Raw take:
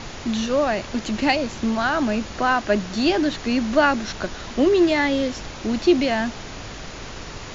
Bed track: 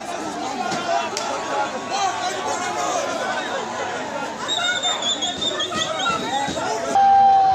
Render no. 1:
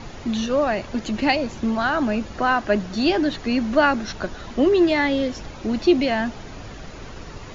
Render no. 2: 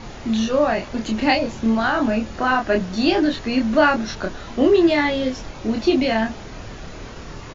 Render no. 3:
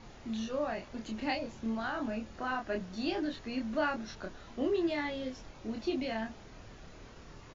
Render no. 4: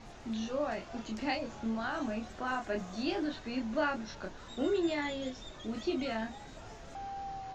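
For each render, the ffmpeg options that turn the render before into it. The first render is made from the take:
-af "afftdn=nr=8:nf=-36"
-filter_complex "[0:a]asplit=2[a][b];[b]adelay=27,volume=-3dB[c];[a][c]amix=inputs=2:normalize=0"
-af "volume=-16dB"
-filter_complex "[1:a]volume=-28.5dB[a];[0:a][a]amix=inputs=2:normalize=0"

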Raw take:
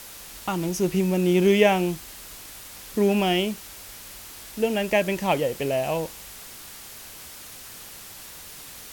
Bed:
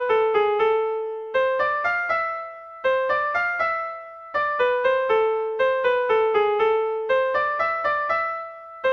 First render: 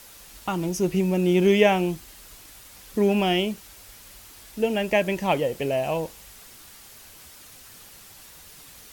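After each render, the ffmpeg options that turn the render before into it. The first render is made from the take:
-af "afftdn=nr=6:nf=-42"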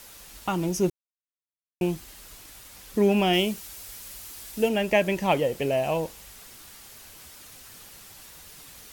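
-filter_complex "[0:a]asettb=1/sr,asplit=3[a][b][c];[a]atrim=end=3.334[d];[b]atrim=start=3.33:end=4.69,asetpts=PTS-STARTPTS,afade=t=in:d=0.004:c=qsin,afade=t=out:st=1.356:d=0.004:c=qsin,highshelf=f=4.5k:g=7[e];[c]atrim=start=4.686[f];[d][e]acrossfade=d=0.004:c1=hsin:c2=qsin[g];[g][f]acrossfade=d=0.004:c1=qsin:c2=hsin,asplit=3[h][i][j];[h]atrim=end=0.9,asetpts=PTS-STARTPTS,afade=t=out:st=0.896:d=0.004:c=hsin[k];[i]atrim=start=0.9:end=1.81,asetpts=PTS-STARTPTS,volume=0[l];[j]atrim=start=1.81,asetpts=PTS-STARTPTS,afade=t=in:d=0.004:c=hsin[m];[k][l][m]concat=n=3:v=0:a=1"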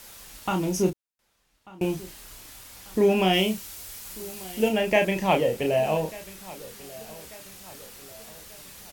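-filter_complex "[0:a]asplit=2[a][b];[b]adelay=32,volume=-5dB[c];[a][c]amix=inputs=2:normalize=0,asplit=2[d][e];[e]adelay=1191,lowpass=f=3.8k:p=1,volume=-20dB,asplit=2[f][g];[g]adelay=1191,lowpass=f=3.8k:p=1,volume=0.48,asplit=2[h][i];[i]adelay=1191,lowpass=f=3.8k:p=1,volume=0.48,asplit=2[j][k];[k]adelay=1191,lowpass=f=3.8k:p=1,volume=0.48[l];[d][f][h][j][l]amix=inputs=5:normalize=0"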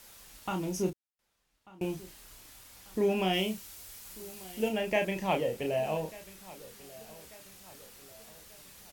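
-af "volume=-7.5dB"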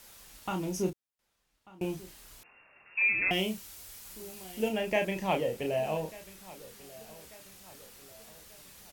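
-filter_complex "[0:a]asettb=1/sr,asplit=3[a][b][c];[a]atrim=end=2.434[d];[b]atrim=start=2.43:end=3.31,asetpts=PTS-STARTPTS,afade=t=in:d=0.004:c=qsin,afade=t=out:st=0.876:d=0.004:c=qsin,lowpass=f=2.4k:t=q:w=0.5098,lowpass=f=2.4k:t=q:w=0.6013,lowpass=f=2.4k:t=q:w=0.9,lowpass=f=2.4k:t=q:w=2.563,afreqshift=-2800[e];[c]atrim=start=3.306[f];[d][e]acrossfade=d=0.004:c1=hsin:c2=qsin[g];[g][f]acrossfade=d=0.004:c1=qsin:c2=hsin"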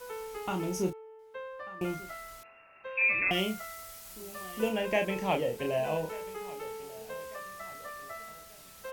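-filter_complex "[1:a]volume=-21dB[a];[0:a][a]amix=inputs=2:normalize=0"

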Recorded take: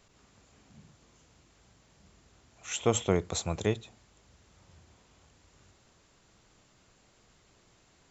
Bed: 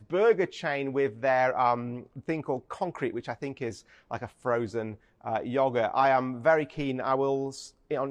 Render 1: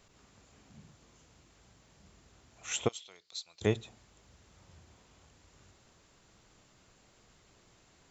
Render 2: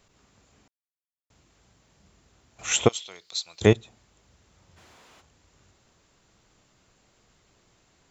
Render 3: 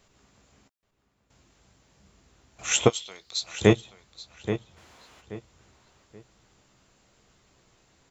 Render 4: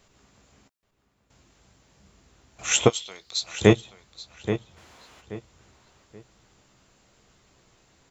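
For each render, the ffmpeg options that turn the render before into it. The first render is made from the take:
-filter_complex "[0:a]asplit=3[a][b][c];[a]afade=t=out:st=2.87:d=0.02[d];[b]bandpass=f=4.4k:t=q:w=4.6,afade=t=in:st=2.87:d=0.02,afade=t=out:st=3.61:d=0.02[e];[c]afade=t=in:st=3.61:d=0.02[f];[d][e][f]amix=inputs=3:normalize=0"
-filter_complex "[0:a]asplit=3[a][b][c];[a]afade=t=out:st=4.76:d=0.02[d];[b]asplit=2[e][f];[f]highpass=f=720:p=1,volume=28dB,asoftclip=type=tanh:threshold=-46.5dB[g];[e][g]amix=inputs=2:normalize=0,lowpass=f=3.4k:p=1,volume=-6dB,afade=t=in:st=4.76:d=0.02,afade=t=out:st=5.2:d=0.02[h];[c]afade=t=in:st=5.2:d=0.02[i];[d][h][i]amix=inputs=3:normalize=0,asplit=5[j][k][l][m][n];[j]atrim=end=0.68,asetpts=PTS-STARTPTS,afade=t=out:st=0.676:d=0.004:c=hsin[o];[k]atrim=start=0.68:end=1.3,asetpts=PTS-STARTPTS,volume=0[p];[l]atrim=start=1.3:end=2.592,asetpts=PTS-STARTPTS,afade=t=in:d=0.004:c=hsin[q];[m]atrim=start=2.588:end=3.732,asetpts=PTS-STARTPTS,volume=11dB[r];[n]atrim=start=3.728[s];[o][p][q]concat=n=3:v=0:a=1[t];[t][r]acrossfade=d=0.004:c1=hsin:c2=hsin[u];[u][s]acrossfade=d=0.004:c1=hsin:c2=hsin"
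-filter_complex "[0:a]asplit=2[a][b];[b]adelay=15,volume=-10dB[c];[a][c]amix=inputs=2:normalize=0,asplit=2[d][e];[e]adelay=829,lowpass=f=3.2k:p=1,volume=-10dB,asplit=2[f][g];[g]adelay=829,lowpass=f=3.2k:p=1,volume=0.29,asplit=2[h][i];[i]adelay=829,lowpass=f=3.2k:p=1,volume=0.29[j];[d][f][h][j]amix=inputs=4:normalize=0"
-af "volume=2dB,alimiter=limit=-1dB:level=0:latency=1"

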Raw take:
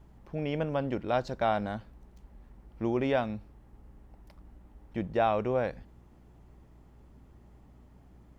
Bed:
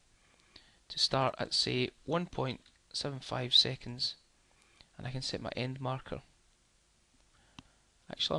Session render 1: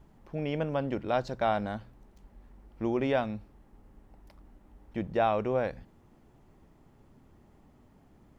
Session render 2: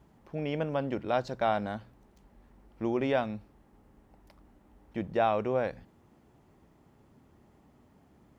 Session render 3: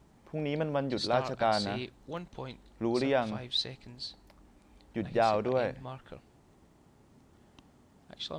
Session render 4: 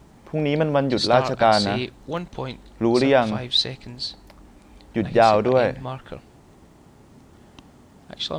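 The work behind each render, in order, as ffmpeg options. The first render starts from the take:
-af "bandreject=f=60:t=h:w=4,bandreject=f=120:t=h:w=4,bandreject=f=180:t=h:w=4"
-af "highpass=49,lowshelf=f=140:g=-3"
-filter_complex "[1:a]volume=-6.5dB[a];[0:a][a]amix=inputs=2:normalize=0"
-af "volume=11dB"

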